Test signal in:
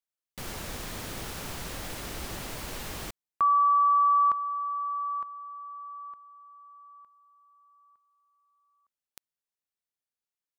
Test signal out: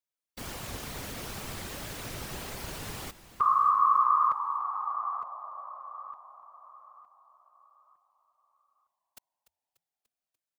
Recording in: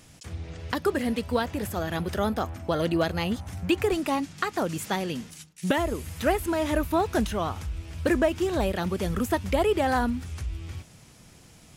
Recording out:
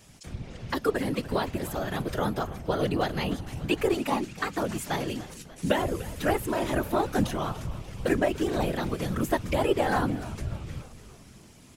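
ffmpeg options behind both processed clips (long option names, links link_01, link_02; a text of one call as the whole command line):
ffmpeg -i in.wav -filter_complex "[0:a]afftfilt=real='hypot(re,im)*cos(2*PI*random(0))':imag='hypot(re,im)*sin(2*PI*random(1))':win_size=512:overlap=0.75,asplit=7[link_01][link_02][link_03][link_04][link_05][link_06][link_07];[link_02]adelay=293,afreqshift=-86,volume=-16dB[link_08];[link_03]adelay=586,afreqshift=-172,volume=-20.7dB[link_09];[link_04]adelay=879,afreqshift=-258,volume=-25.5dB[link_10];[link_05]adelay=1172,afreqshift=-344,volume=-30.2dB[link_11];[link_06]adelay=1465,afreqshift=-430,volume=-34.9dB[link_12];[link_07]adelay=1758,afreqshift=-516,volume=-39.7dB[link_13];[link_01][link_08][link_09][link_10][link_11][link_12][link_13]amix=inputs=7:normalize=0,volume=4.5dB" out.wav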